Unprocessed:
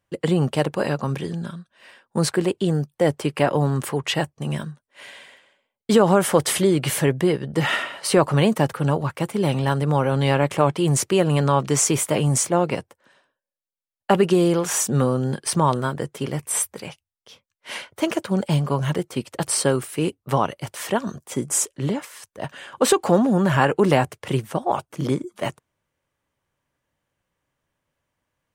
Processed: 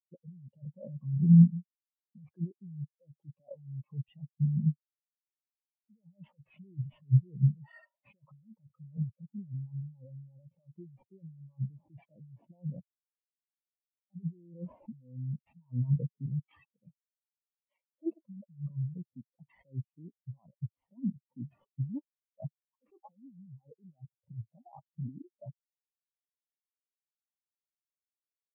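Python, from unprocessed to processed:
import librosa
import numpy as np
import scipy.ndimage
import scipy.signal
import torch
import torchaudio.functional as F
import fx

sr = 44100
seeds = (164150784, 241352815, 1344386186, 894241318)

y = fx.sample_hold(x, sr, seeds[0], rate_hz=6400.0, jitter_pct=0)
y = fx.graphic_eq_15(y, sr, hz=(400, 1600, 4000, 10000), db=(-7, -9, -7, -6))
y = fx.over_compress(y, sr, threshold_db=-29.0, ratio=-1.0)
y = fx.spectral_expand(y, sr, expansion=4.0)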